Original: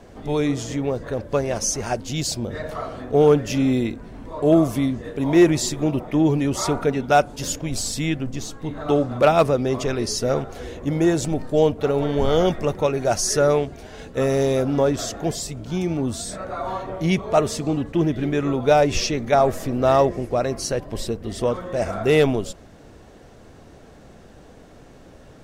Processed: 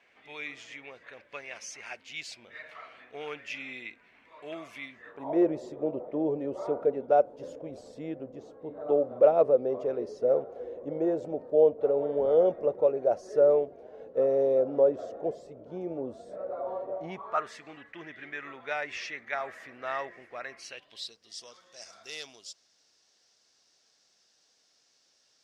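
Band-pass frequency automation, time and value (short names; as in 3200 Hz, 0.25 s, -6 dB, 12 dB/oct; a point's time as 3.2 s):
band-pass, Q 3.7
4.93 s 2300 Hz
5.38 s 520 Hz
16.87 s 520 Hz
17.54 s 1900 Hz
20.49 s 1900 Hz
21.21 s 5200 Hz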